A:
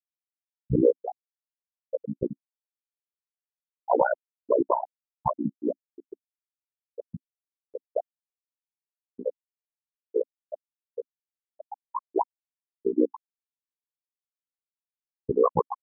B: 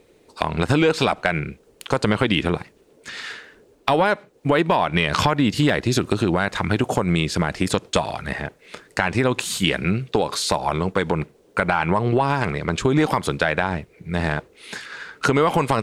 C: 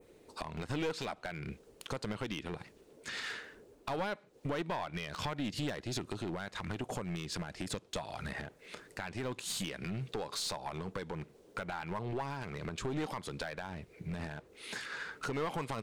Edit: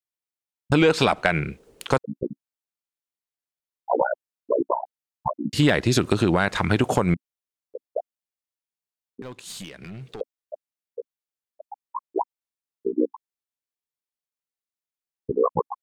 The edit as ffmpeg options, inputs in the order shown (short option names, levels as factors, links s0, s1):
-filter_complex "[1:a]asplit=2[s0][s1];[0:a]asplit=4[s2][s3][s4][s5];[s2]atrim=end=0.722[s6];[s0]atrim=start=0.718:end=1.982[s7];[s3]atrim=start=1.978:end=5.532[s8];[s1]atrim=start=5.528:end=7.142[s9];[s4]atrim=start=7.138:end=9.222[s10];[2:a]atrim=start=9.218:end=10.212[s11];[s5]atrim=start=10.208[s12];[s6][s7]acrossfade=d=0.004:c1=hsin:c2=hsin[s13];[s13][s8]acrossfade=d=0.004:c1=hsin:c2=hsin[s14];[s14][s9]acrossfade=d=0.004:c1=hsin:c2=hsin[s15];[s15][s10]acrossfade=d=0.004:c1=hsin:c2=hsin[s16];[s16][s11]acrossfade=d=0.004:c1=hsin:c2=hsin[s17];[s17][s12]acrossfade=d=0.004:c1=hsin:c2=hsin"